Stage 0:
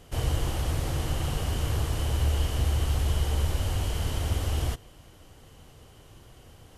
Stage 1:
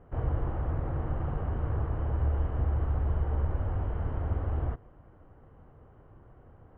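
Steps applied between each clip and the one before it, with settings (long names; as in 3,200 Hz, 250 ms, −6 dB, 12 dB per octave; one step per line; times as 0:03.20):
low-pass filter 1,500 Hz 24 dB per octave
level −2.5 dB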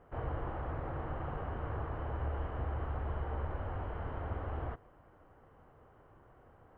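low-shelf EQ 360 Hz −11.5 dB
level +1.5 dB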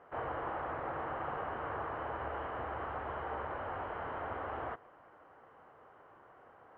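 resonant band-pass 1,400 Hz, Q 0.53
level +6.5 dB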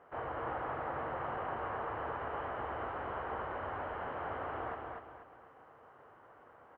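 repeating echo 242 ms, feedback 37%, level −3.5 dB
level −1.5 dB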